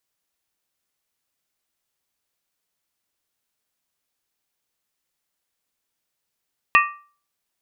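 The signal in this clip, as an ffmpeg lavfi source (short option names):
-f lavfi -i "aevalsrc='0.282*pow(10,-3*t/0.41)*sin(2*PI*1170*t)+0.237*pow(10,-3*t/0.325)*sin(2*PI*1865*t)+0.2*pow(10,-3*t/0.281)*sin(2*PI*2499.1*t)+0.168*pow(10,-3*t/0.271)*sin(2*PI*2686.3*t)':d=0.63:s=44100"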